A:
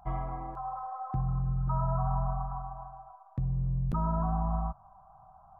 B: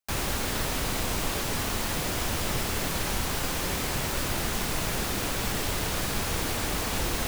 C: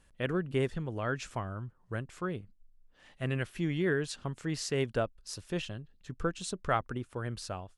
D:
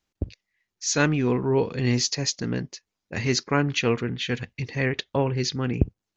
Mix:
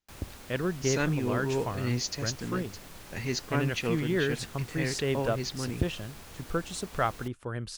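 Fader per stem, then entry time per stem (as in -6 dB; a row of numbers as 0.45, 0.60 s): off, -18.5 dB, +1.5 dB, -8.0 dB; off, 0.00 s, 0.30 s, 0.00 s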